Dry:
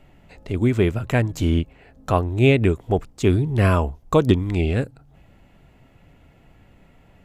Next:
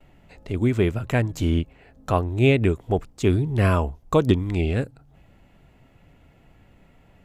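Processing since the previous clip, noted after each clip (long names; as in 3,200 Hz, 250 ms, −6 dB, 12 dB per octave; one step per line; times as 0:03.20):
noise gate with hold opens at −45 dBFS
level −2 dB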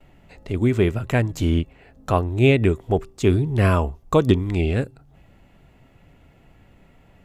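tuned comb filter 390 Hz, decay 0.37 s, harmonics odd, mix 40%
level +6 dB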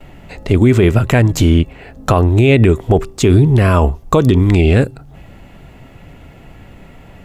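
boost into a limiter +15 dB
level −1 dB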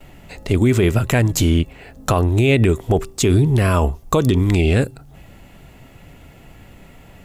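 high-shelf EQ 4,700 Hz +10 dB
level −5 dB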